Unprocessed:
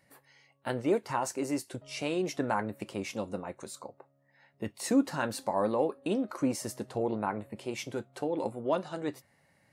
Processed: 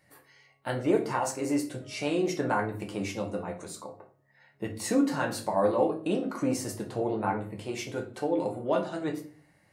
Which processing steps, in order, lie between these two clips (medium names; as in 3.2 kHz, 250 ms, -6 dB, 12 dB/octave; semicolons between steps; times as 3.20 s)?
simulated room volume 33 m³, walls mixed, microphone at 0.49 m